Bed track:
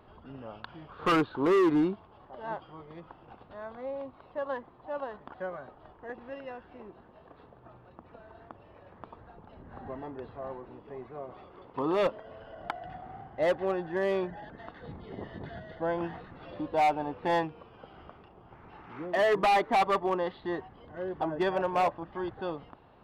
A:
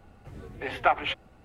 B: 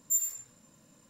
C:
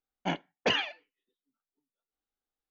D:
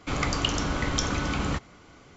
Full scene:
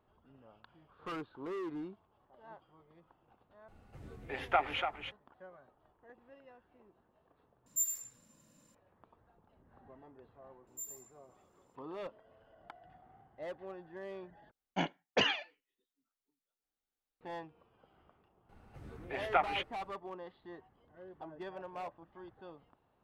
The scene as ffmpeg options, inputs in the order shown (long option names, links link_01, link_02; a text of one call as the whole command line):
ffmpeg -i bed.wav -i cue0.wav -i cue1.wav -i cue2.wav -filter_complex "[1:a]asplit=2[link_01][link_02];[2:a]asplit=2[link_03][link_04];[0:a]volume=-16.5dB[link_05];[link_01]aecho=1:1:290:0.447[link_06];[link_02]bandreject=frequency=7200:width=15[link_07];[link_05]asplit=4[link_08][link_09][link_10][link_11];[link_08]atrim=end=3.684[link_12];[link_06]atrim=end=1.44,asetpts=PTS-STARTPTS,volume=-7dB[link_13];[link_09]atrim=start=5.116:end=7.664[link_14];[link_03]atrim=end=1.09,asetpts=PTS-STARTPTS,volume=-5dB[link_15];[link_10]atrim=start=8.746:end=14.514[link_16];[3:a]atrim=end=2.7,asetpts=PTS-STARTPTS,volume=-2.5dB[link_17];[link_11]atrim=start=17.206[link_18];[link_04]atrim=end=1.09,asetpts=PTS-STARTPTS,volume=-16.5dB,afade=type=in:duration=0.004:curve=hsin,afade=type=out:start_time=1.086:duration=0.004:curve=hsin,adelay=10670[link_19];[link_07]atrim=end=1.44,asetpts=PTS-STARTPTS,volume=-7dB,afade=type=in:duration=0.004:curve=hsin,afade=type=out:start_time=1.436:duration=0.004:curve=hsin,adelay=18490[link_20];[link_12][link_13]acrossfade=duration=0.004:curve1=hsin:curve2=hsin[link_21];[link_21][link_14]acrossfade=duration=0.004:curve1=hsin:curve2=hsin[link_22];[link_22][link_15]acrossfade=duration=0.004:curve1=hsin:curve2=hsin[link_23];[link_23][link_16]acrossfade=duration=0.004:curve1=hsin:curve2=hsin[link_24];[link_24][link_17]acrossfade=duration=0.004:curve1=hsin:curve2=hsin[link_25];[link_25][link_18]acrossfade=duration=0.004:curve1=hsin:curve2=hsin[link_26];[link_26][link_19][link_20]amix=inputs=3:normalize=0" out.wav